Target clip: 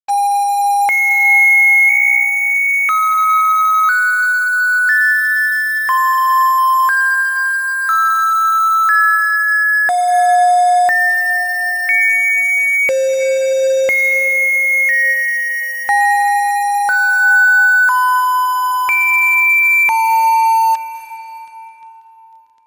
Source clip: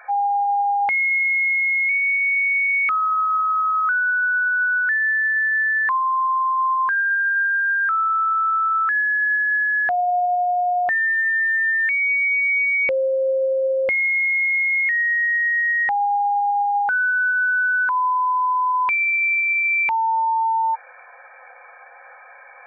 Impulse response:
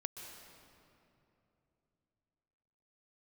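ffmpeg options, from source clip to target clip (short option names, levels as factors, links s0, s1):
-filter_complex "[0:a]acrusher=bits=4:mix=0:aa=0.5,asplit=2[s0][s1];[1:a]atrim=start_sample=2205,asetrate=26019,aresample=44100,lowshelf=f=200:g=-9.5[s2];[s1][s2]afir=irnorm=-1:irlink=0,volume=1.19[s3];[s0][s3]amix=inputs=2:normalize=0"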